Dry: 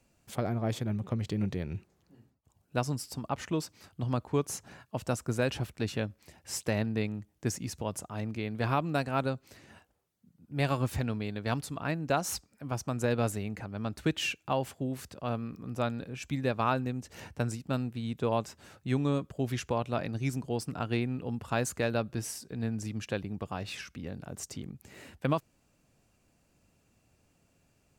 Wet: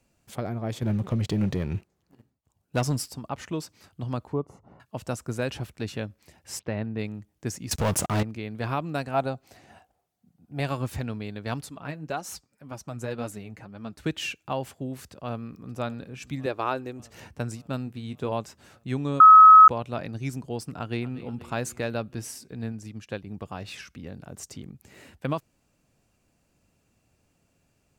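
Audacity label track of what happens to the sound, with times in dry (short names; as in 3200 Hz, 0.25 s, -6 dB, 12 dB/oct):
0.820000	3.080000	sample leveller passes 2
4.330000	4.800000	polynomial smoothing over 65 samples
6.590000	6.990000	air absorption 310 m
7.710000	8.230000	sample leveller passes 5
9.140000	10.600000	bell 730 Hz +13.5 dB 0.34 oct
11.690000	14.000000	flange 1.9 Hz, delay 3.1 ms, depth 5.1 ms, regen +36%
15.090000	15.760000	echo throw 0.58 s, feedback 65%, level -17 dB
16.460000	17.000000	resonant low shelf 260 Hz -6.5 dB, Q 3
17.850000	18.320000	doubler 20 ms -11 dB
19.200000	19.680000	bleep 1280 Hz -7 dBFS
20.780000	21.250000	echo throw 0.24 s, feedback 60%, level -15.5 dB
22.720000	23.270000	upward expander, over -42 dBFS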